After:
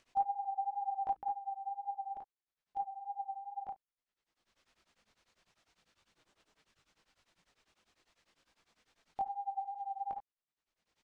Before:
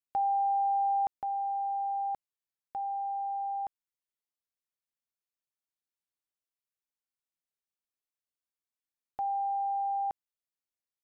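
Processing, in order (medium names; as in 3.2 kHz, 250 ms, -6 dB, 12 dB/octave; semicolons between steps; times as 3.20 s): 0.57–1.17 s: hum notches 60/120/180/240/300 Hz; 9.20–10.09 s: crackle 210 per s -59 dBFS; distance through air 120 m; early reflections 56 ms -8.5 dB, 70 ms -13.5 dB; upward compressor, threshold -49 dBFS; chorus voices 6, 1.3 Hz, delay 21 ms, depth 3.2 ms; wow and flutter 20 cents; tremolo of two beating tones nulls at 10 Hz; trim +3.5 dB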